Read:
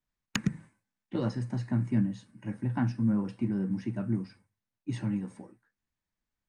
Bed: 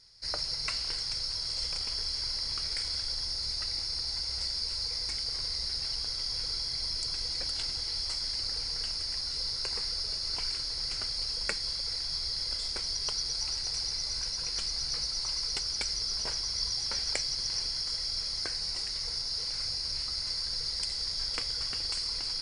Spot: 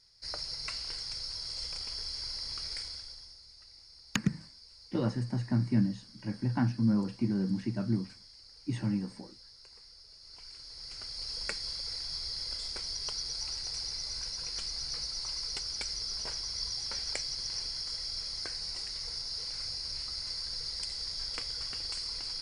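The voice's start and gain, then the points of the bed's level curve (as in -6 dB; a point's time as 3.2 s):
3.80 s, 0.0 dB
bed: 2.77 s -5 dB
3.45 s -21 dB
10.09 s -21 dB
11.37 s -4 dB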